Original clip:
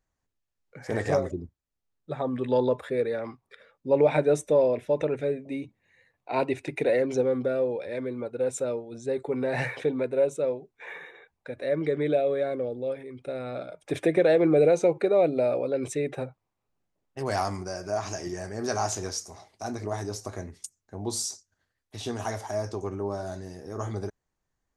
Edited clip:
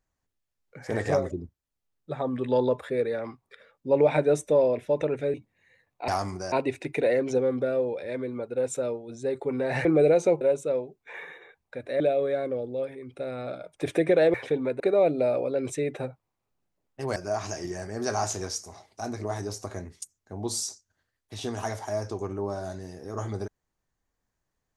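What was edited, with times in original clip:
5.34–5.61 cut
9.68–10.14 swap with 14.42–14.98
11.73–12.08 cut
17.34–17.78 move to 6.35

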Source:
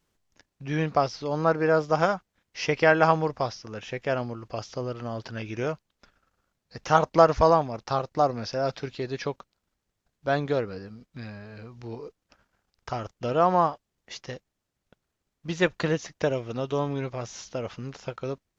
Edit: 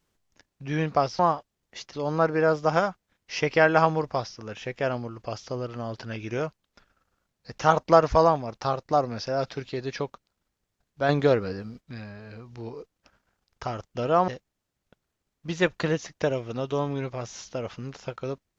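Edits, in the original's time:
10.35–11.07 gain +5.5 dB
13.54–14.28 move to 1.19

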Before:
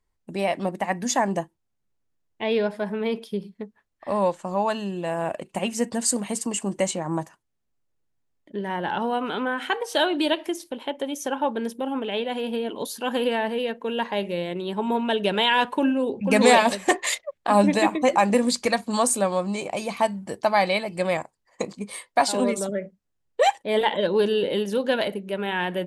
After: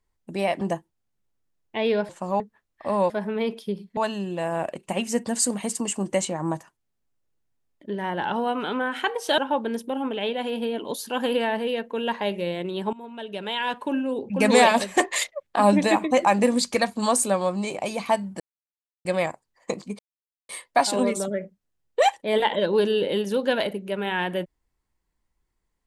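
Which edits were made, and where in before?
0.61–1.27 cut
2.75–3.62 swap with 4.32–4.63
10.04–11.29 cut
14.84–16.61 fade in, from -20 dB
20.31–20.96 mute
21.9 insert silence 0.50 s

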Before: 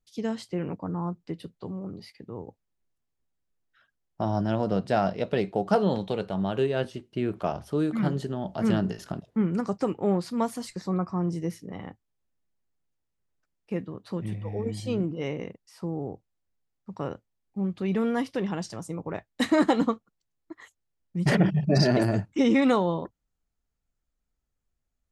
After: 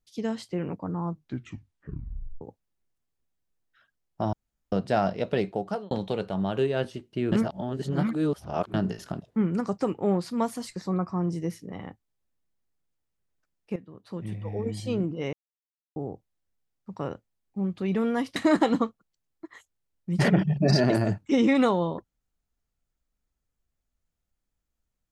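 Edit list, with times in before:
1.05 tape stop 1.36 s
4.33–4.72 room tone
5.45–5.91 fade out
7.32–8.74 reverse
13.76–14.47 fade in, from -14.5 dB
15.33–15.96 mute
18.36–19.43 cut

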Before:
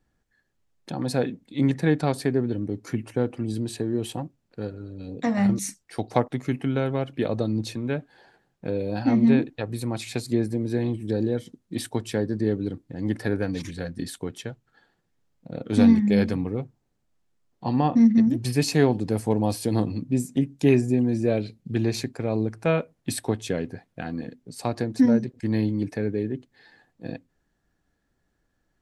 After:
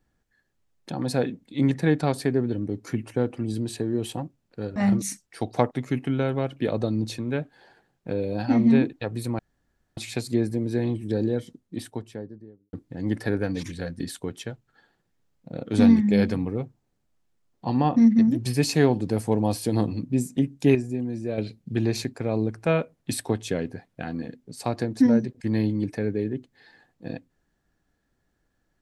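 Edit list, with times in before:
4.76–5.33 cut
9.96 insert room tone 0.58 s
11.25–12.72 studio fade out
20.74–21.37 gain -7 dB

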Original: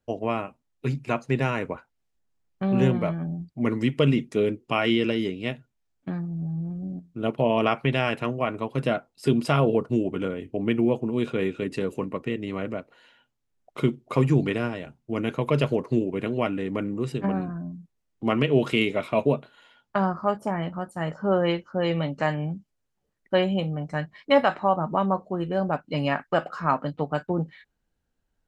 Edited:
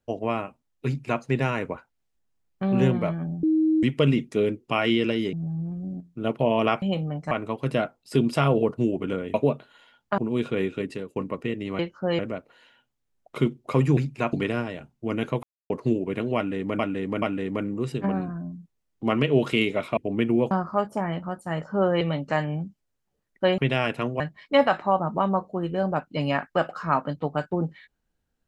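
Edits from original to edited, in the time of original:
0.86–1.22 copy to 14.39
3.43–3.83 bleep 315 Hz -17.5 dBFS
5.33–6.32 cut
7.81–8.43 swap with 23.48–23.97
10.46–11 swap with 19.17–20.01
11.62–11.98 fade out, to -21.5 dB
15.49–15.76 mute
16.42–16.85 loop, 3 plays
21.51–21.91 move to 12.61

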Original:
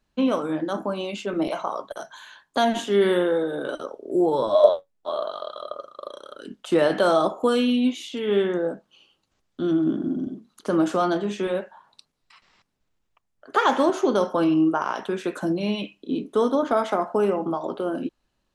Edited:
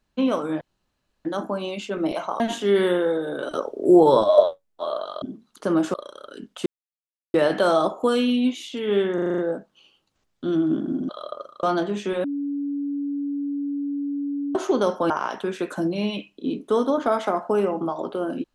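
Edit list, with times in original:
0.61 insert room tone 0.64 s
1.76–2.66 cut
3.77–4.5 gain +7 dB
5.48–6.02 swap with 10.25–10.97
6.74 insert silence 0.68 s
8.54 stutter 0.04 s, 7 plays
11.58–13.89 bleep 284 Hz -24 dBFS
14.44–14.75 cut

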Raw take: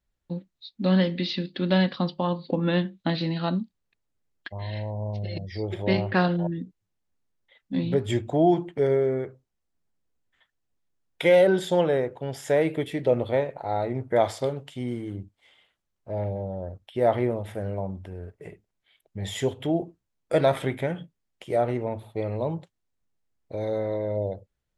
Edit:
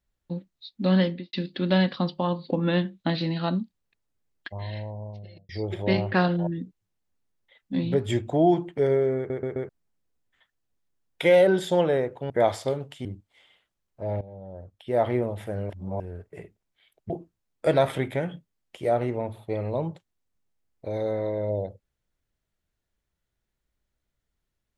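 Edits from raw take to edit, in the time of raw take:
1.04–1.33 studio fade out
4.57–5.49 fade out
9.17 stutter in place 0.13 s, 4 plays
12.3–14.06 cut
14.81–15.13 cut
16.29–17.28 fade in, from -15 dB
17.78–18.08 reverse
19.18–19.77 cut

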